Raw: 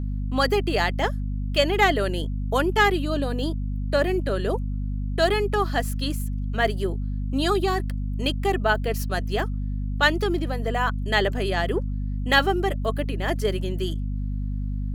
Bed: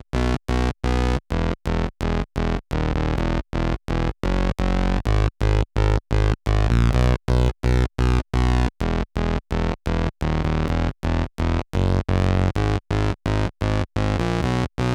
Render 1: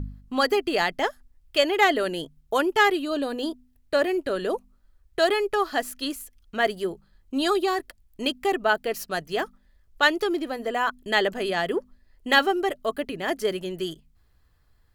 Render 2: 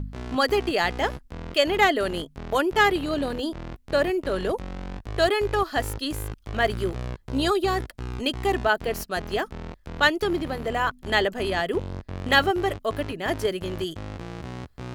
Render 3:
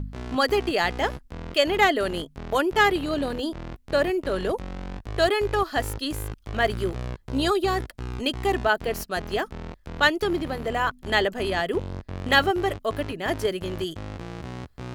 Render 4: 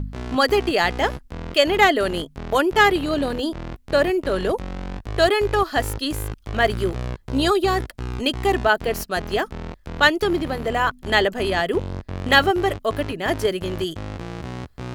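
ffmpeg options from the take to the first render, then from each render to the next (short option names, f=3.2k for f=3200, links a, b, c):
-af "bandreject=f=50:t=h:w=4,bandreject=f=100:t=h:w=4,bandreject=f=150:t=h:w=4,bandreject=f=200:t=h:w=4,bandreject=f=250:t=h:w=4"
-filter_complex "[1:a]volume=-14.5dB[a];[0:a][a]amix=inputs=2:normalize=0"
-af anull
-af "volume=4dB,alimiter=limit=-2dB:level=0:latency=1"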